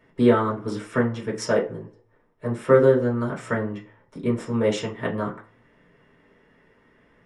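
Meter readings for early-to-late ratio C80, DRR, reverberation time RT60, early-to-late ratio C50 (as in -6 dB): 17.5 dB, -5.0 dB, not exponential, 11.5 dB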